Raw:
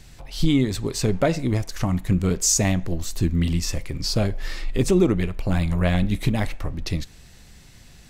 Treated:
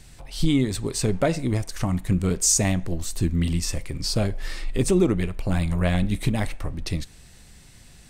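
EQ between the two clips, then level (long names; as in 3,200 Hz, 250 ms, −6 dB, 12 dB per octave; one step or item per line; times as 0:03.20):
parametric band 8,800 Hz +10 dB 0.22 octaves
−1.5 dB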